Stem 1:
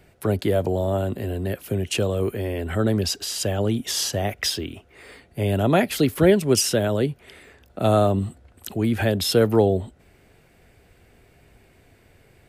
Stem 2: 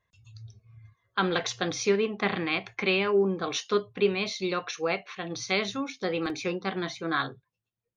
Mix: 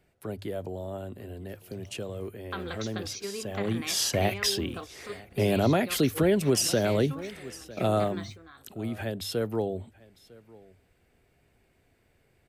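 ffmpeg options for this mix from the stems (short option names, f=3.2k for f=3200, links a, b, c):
-filter_complex "[0:a]bandreject=f=50:t=h:w=6,bandreject=f=100:t=h:w=6,volume=-0.5dB,afade=t=in:st=3.46:d=0.75:silence=0.237137,afade=t=out:st=7.46:d=0.73:silence=0.281838,asplit=3[a][b][c];[b]volume=-23dB[d];[1:a]acompressor=threshold=-38dB:ratio=2.5,aeval=exprs='val(0)*gte(abs(val(0)),0.0015)':c=same,adelay=1350,volume=-1dB[e];[c]apad=whole_len=410812[f];[e][f]sidechaingate=range=-14dB:threshold=-44dB:ratio=16:detection=peak[g];[d]aecho=0:1:952:1[h];[a][g][h]amix=inputs=3:normalize=0,alimiter=limit=-14dB:level=0:latency=1:release=181"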